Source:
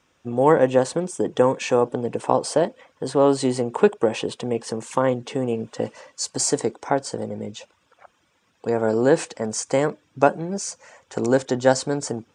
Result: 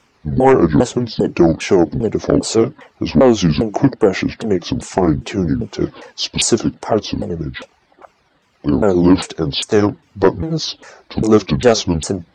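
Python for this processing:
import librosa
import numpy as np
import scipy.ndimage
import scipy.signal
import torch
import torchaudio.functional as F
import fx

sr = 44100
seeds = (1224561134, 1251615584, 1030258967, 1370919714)

y = fx.pitch_ramps(x, sr, semitones=-12.0, every_ms=401)
y = fx.fold_sine(y, sr, drive_db=5, ceiling_db=-2.0)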